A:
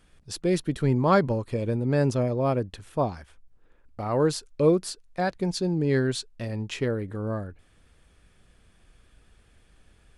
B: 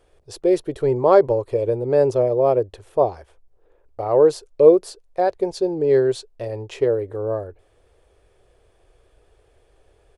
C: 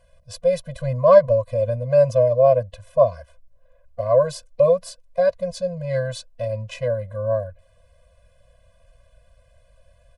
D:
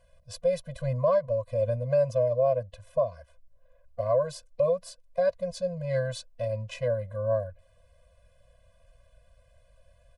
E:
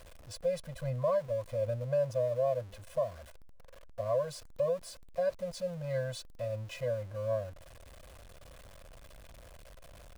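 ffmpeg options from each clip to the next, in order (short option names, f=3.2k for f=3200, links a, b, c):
-af "firequalizer=gain_entry='entry(110,0);entry(200,-13);entry(390,12);entry(570,11);entry(1400,-2)':delay=0.05:min_phase=1,volume=-1dB"
-af "afftfilt=real='re*eq(mod(floor(b*sr/1024/240),2),0)':imag='im*eq(mod(floor(b*sr/1024/240),2),0)':win_size=1024:overlap=0.75,volume=4dB"
-af "alimiter=limit=-11.5dB:level=0:latency=1:release=488,volume=-4.5dB"
-af "aeval=exprs='val(0)+0.5*0.00891*sgn(val(0))':c=same,volume=-6.5dB"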